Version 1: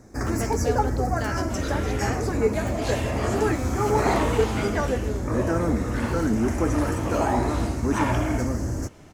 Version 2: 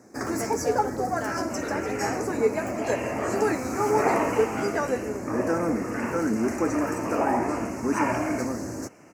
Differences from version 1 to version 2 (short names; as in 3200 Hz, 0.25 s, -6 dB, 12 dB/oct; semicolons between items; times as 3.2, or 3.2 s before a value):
speech: add band-pass 720 Hz, Q 0.62; second sound: add steep low-pass 2800 Hz 96 dB/oct; master: add HPF 210 Hz 12 dB/oct